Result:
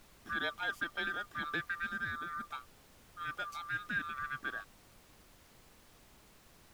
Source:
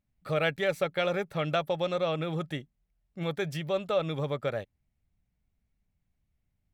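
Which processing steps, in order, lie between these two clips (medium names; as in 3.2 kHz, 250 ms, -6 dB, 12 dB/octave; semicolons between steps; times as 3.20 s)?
split-band scrambler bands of 1 kHz; added noise pink -52 dBFS; 1.89–2.44 s: peaking EQ 2.7 kHz -13 dB 0.37 oct; trim -9 dB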